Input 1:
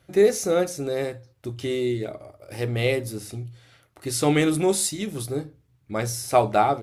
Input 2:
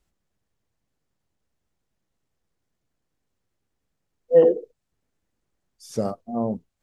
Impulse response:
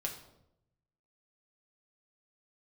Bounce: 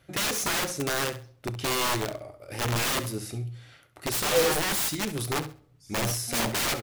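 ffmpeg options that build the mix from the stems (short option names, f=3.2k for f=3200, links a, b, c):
-filter_complex "[0:a]equalizer=f=2.1k:t=o:w=1.8:g=3,aeval=exprs='(mod(11.9*val(0)+1,2)-1)/11.9':c=same,volume=-1.5dB,asplit=3[a][b][c];[b]volume=-17dB[d];[c]volume=-12dB[e];[1:a]volume=-9.5dB[f];[2:a]atrim=start_sample=2205[g];[d][g]afir=irnorm=-1:irlink=0[h];[e]aecho=0:1:67|134|201|268:1|0.23|0.0529|0.0122[i];[a][f][h][i]amix=inputs=4:normalize=0"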